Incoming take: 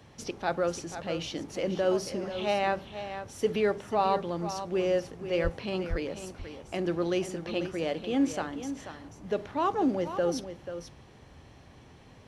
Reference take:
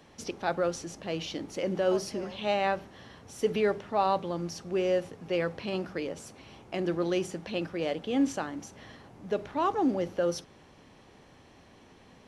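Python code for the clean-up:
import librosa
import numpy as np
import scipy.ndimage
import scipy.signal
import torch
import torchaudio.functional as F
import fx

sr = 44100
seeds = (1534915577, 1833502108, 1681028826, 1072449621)

y = fx.highpass(x, sr, hz=140.0, slope=24, at=(5.43, 5.55), fade=0.02)
y = fx.highpass(y, sr, hz=140.0, slope=24, at=(5.89, 6.01), fade=0.02)
y = fx.noise_reduce(y, sr, print_start_s=11.62, print_end_s=12.12, reduce_db=6.0)
y = fx.fix_echo_inverse(y, sr, delay_ms=488, level_db=-10.5)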